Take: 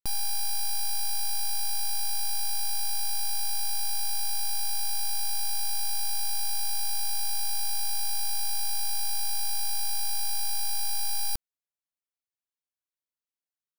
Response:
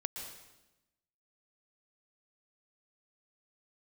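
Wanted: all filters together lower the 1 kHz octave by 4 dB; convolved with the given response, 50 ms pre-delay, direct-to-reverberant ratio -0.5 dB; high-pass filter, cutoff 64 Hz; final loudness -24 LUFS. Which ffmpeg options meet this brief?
-filter_complex "[0:a]highpass=64,equalizer=f=1000:t=o:g=-5.5,asplit=2[s0][s1];[1:a]atrim=start_sample=2205,adelay=50[s2];[s1][s2]afir=irnorm=-1:irlink=0,volume=1[s3];[s0][s3]amix=inputs=2:normalize=0,volume=1.12"

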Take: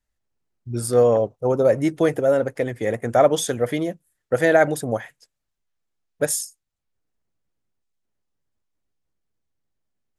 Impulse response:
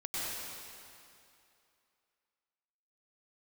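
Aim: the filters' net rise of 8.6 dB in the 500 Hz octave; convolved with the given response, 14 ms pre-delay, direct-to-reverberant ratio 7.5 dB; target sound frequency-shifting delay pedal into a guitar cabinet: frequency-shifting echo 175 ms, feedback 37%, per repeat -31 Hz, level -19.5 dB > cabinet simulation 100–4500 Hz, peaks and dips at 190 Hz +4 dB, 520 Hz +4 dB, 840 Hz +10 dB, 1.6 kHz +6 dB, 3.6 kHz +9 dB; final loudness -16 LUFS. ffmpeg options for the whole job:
-filter_complex "[0:a]equalizer=f=500:t=o:g=5.5,asplit=2[s0][s1];[1:a]atrim=start_sample=2205,adelay=14[s2];[s1][s2]afir=irnorm=-1:irlink=0,volume=0.237[s3];[s0][s3]amix=inputs=2:normalize=0,asplit=4[s4][s5][s6][s7];[s5]adelay=175,afreqshift=-31,volume=0.106[s8];[s6]adelay=350,afreqshift=-62,volume=0.0394[s9];[s7]adelay=525,afreqshift=-93,volume=0.0145[s10];[s4][s8][s9][s10]amix=inputs=4:normalize=0,highpass=100,equalizer=f=190:t=q:w=4:g=4,equalizer=f=520:t=q:w=4:g=4,equalizer=f=840:t=q:w=4:g=10,equalizer=f=1600:t=q:w=4:g=6,equalizer=f=3600:t=q:w=4:g=9,lowpass=f=4500:w=0.5412,lowpass=f=4500:w=1.3066,volume=0.668"

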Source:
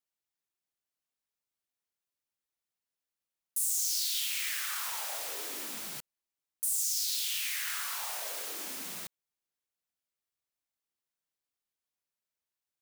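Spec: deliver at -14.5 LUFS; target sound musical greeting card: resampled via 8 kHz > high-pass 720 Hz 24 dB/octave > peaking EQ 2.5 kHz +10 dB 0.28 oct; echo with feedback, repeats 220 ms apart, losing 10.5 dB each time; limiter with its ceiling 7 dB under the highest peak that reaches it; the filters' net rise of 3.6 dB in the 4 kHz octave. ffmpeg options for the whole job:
-af "equalizer=f=4000:t=o:g=3.5,alimiter=level_in=1.12:limit=0.0631:level=0:latency=1,volume=0.891,aecho=1:1:220|440|660:0.299|0.0896|0.0269,aresample=8000,aresample=44100,highpass=f=720:w=0.5412,highpass=f=720:w=1.3066,equalizer=f=2500:t=o:w=0.28:g=10,volume=13.3"

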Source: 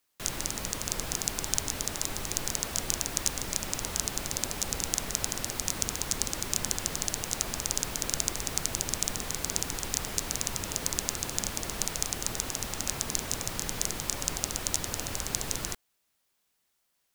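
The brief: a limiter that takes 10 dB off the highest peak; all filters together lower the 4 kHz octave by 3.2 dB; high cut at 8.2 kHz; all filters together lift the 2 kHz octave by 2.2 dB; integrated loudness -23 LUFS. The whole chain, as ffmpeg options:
-af "lowpass=8200,equalizer=f=2000:t=o:g=4,equalizer=f=4000:t=o:g=-5,volume=5.01,alimiter=limit=0.794:level=0:latency=1"

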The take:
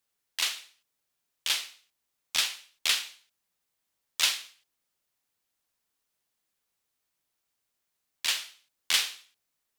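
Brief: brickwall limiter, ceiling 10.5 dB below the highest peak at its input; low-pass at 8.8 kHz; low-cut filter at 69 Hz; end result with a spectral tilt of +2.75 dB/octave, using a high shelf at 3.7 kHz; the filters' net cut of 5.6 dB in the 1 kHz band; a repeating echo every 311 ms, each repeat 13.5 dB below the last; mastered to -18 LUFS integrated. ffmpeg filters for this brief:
-af "highpass=69,lowpass=8800,equalizer=f=1000:t=o:g=-6.5,highshelf=f=3700:g=-8.5,alimiter=limit=0.0631:level=0:latency=1,aecho=1:1:311|622:0.211|0.0444,volume=11.2"

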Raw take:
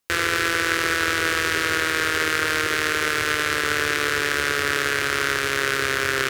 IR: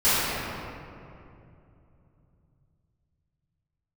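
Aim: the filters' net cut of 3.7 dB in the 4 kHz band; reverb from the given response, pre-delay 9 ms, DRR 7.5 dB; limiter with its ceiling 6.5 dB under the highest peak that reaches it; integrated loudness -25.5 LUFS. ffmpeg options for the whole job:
-filter_complex "[0:a]equalizer=f=4000:t=o:g=-5,alimiter=limit=0.266:level=0:latency=1,asplit=2[s0][s1];[1:a]atrim=start_sample=2205,adelay=9[s2];[s1][s2]afir=irnorm=-1:irlink=0,volume=0.0447[s3];[s0][s3]amix=inputs=2:normalize=0"

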